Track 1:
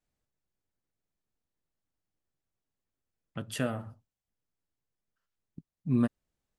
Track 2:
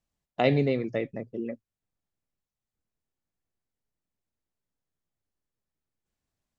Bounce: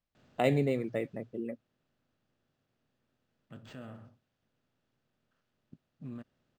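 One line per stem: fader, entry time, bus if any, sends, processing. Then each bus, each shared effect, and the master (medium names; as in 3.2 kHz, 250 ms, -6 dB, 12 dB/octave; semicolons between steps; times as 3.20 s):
1.09 s -2 dB -> 1.58 s -14.5 dB, 0.15 s, no send, spectral levelling over time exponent 0.6; peak limiter -20.5 dBFS, peak gain reduction 7 dB
-4.0 dB, 0.00 s, no send, none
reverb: none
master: decimation joined by straight lines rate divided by 4×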